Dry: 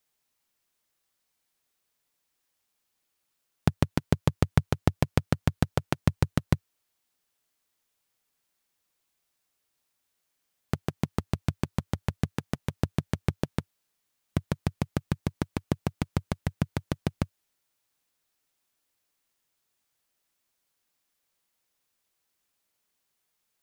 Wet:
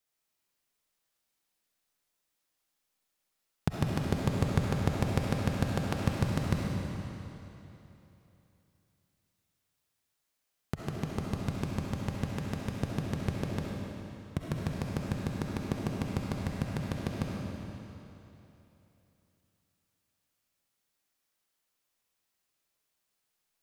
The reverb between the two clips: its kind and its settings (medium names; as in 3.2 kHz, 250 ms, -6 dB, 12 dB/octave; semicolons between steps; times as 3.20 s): algorithmic reverb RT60 3.1 s, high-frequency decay 0.95×, pre-delay 25 ms, DRR -2.5 dB; trim -6.5 dB